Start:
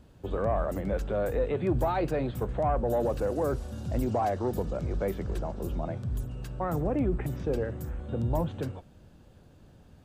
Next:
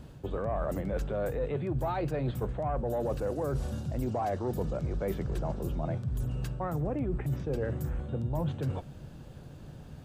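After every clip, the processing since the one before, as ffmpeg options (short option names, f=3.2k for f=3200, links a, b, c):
-af "equalizer=f=140:t=o:w=0.22:g=10.5,areverse,acompressor=threshold=-36dB:ratio=5,areverse,volume=6.5dB"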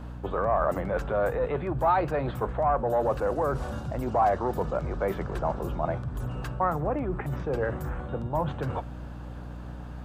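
-af "equalizer=f=1.1k:t=o:w=2.2:g=15,aeval=exprs='val(0)+0.0158*(sin(2*PI*60*n/s)+sin(2*PI*2*60*n/s)/2+sin(2*PI*3*60*n/s)/3+sin(2*PI*4*60*n/s)/4+sin(2*PI*5*60*n/s)/5)':c=same,volume=-2dB"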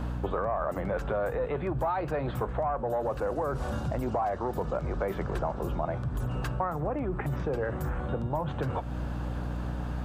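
-af "acompressor=threshold=-35dB:ratio=5,volume=7dB"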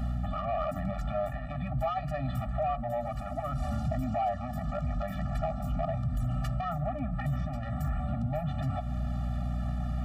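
-af "asoftclip=type=tanh:threshold=-25.5dB,afftfilt=real='re*eq(mod(floor(b*sr/1024/280),2),0)':imag='im*eq(mod(floor(b*sr/1024/280),2),0)':win_size=1024:overlap=0.75,volume=3dB"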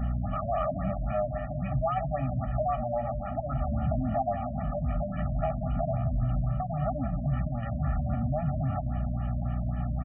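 -af "aecho=1:1:176|352|528|704:0.316|0.12|0.0457|0.0174,afftfilt=real='re*lt(b*sr/1024,640*pow(3400/640,0.5+0.5*sin(2*PI*3.7*pts/sr)))':imag='im*lt(b*sr/1024,640*pow(3400/640,0.5+0.5*sin(2*PI*3.7*pts/sr)))':win_size=1024:overlap=0.75,volume=2.5dB"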